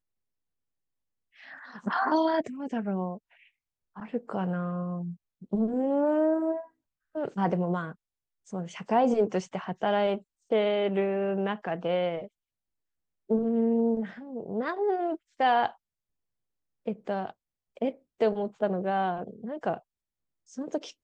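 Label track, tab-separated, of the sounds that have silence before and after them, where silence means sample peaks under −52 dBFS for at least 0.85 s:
1.360000	12.280000	sound
13.290000	15.750000	sound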